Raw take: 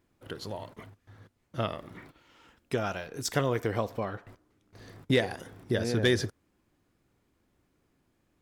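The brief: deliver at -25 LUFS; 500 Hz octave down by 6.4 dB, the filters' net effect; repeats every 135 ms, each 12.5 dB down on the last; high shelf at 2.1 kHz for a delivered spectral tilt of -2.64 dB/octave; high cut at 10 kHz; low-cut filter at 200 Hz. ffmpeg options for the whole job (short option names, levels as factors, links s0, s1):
-af "highpass=200,lowpass=10000,equalizer=f=500:t=o:g=-8.5,highshelf=f=2100:g=6.5,aecho=1:1:135|270|405:0.237|0.0569|0.0137,volume=2.24"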